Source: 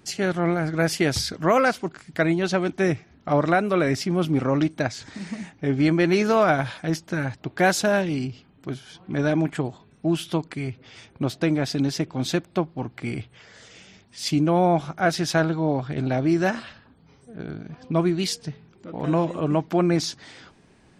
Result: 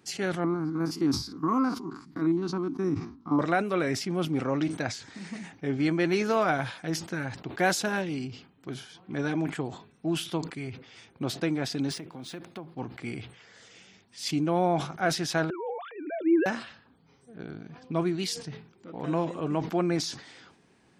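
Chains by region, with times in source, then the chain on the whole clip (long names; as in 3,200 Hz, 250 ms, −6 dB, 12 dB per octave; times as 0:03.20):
0:00.44–0:03.39: spectrum averaged block by block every 50 ms + drawn EQ curve 180 Hz 0 dB, 280 Hz +11 dB, 590 Hz −18 dB, 1,100 Hz +6 dB, 1,700 Hz −15 dB, 3,200 Hz −15 dB, 4,700 Hz −5 dB, 8,500 Hz −14 dB, 13,000 Hz −8 dB
0:11.91–0:12.74: high-pass filter 110 Hz + downward compressor 4 to 1, threshold −31 dBFS + linearly interpolated sample-rate reduction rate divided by 3×
0:15.50–0:16.46: three sine waves on the formant tracks + level that may fall only so fast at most 81 dB per second
whole clip: high-pass filter 160 Hz 6 dB per octave; notch filter 610 Hz, Q 12; level that may fall only so fast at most 110 dB per second; level −5 dB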